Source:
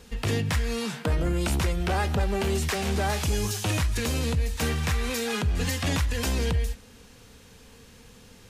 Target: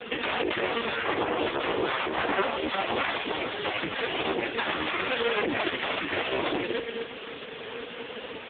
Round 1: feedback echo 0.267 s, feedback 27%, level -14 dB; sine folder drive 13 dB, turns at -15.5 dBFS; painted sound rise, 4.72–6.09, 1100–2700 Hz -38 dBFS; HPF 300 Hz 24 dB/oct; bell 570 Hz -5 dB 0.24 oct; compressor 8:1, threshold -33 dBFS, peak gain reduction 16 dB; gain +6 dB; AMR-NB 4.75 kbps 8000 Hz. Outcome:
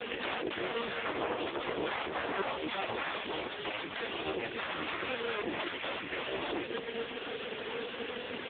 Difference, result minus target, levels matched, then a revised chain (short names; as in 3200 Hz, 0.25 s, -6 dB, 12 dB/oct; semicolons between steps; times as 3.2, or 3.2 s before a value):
compressor: peak gain reduction +8 dB
feedback echo 0.267 s, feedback 27%, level -14 dB; sine folder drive 13 dB, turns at -15.5 dBFS; painted sound rise, 4.72–6.09, 1100–2700 Hz -38 dBFS; HPF 300 Hz 24 dB/oct; bell 570 Hz -5 dB 0.24 oct; compressor 8:1, threshold -24 dBFS, peak gain reduction 8 dB; gain +6 dB; AMR-NB 4.75 kbps 8000 Hz